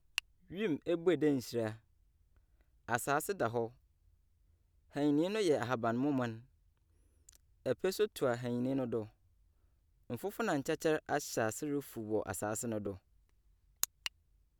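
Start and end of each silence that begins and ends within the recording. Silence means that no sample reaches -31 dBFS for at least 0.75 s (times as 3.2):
1.7–2.91
3.65–4.97
6.29–7.66
8.99–10.12
12.87–13.83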